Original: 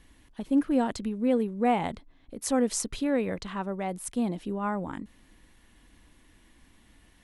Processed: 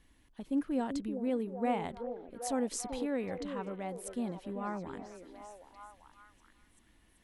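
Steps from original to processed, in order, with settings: delay with a stepping band-pass 0.387 s, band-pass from 390 Hz, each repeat 0.7 oct, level -4 dB; gain -8 dB

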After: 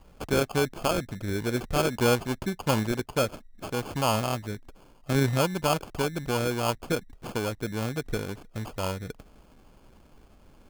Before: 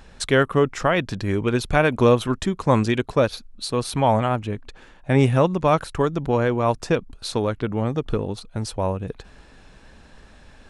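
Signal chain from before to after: sample-and-hold 23×; gain -7 dB

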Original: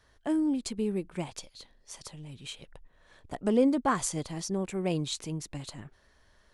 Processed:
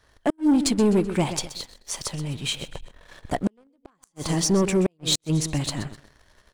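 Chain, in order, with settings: feedback echo 0.127 s, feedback 34%, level -13.5 dB; flipped gate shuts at -20 dBFS, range -40 dB; sample leveller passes 2; gain +6.5 dB

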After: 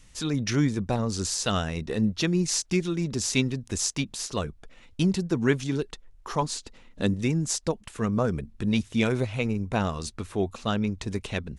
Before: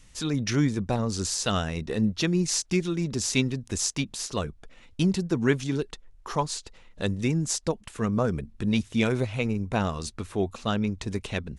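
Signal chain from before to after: 6.42–7.14 bell 250 Hz +9.5 dB 0.68 oct

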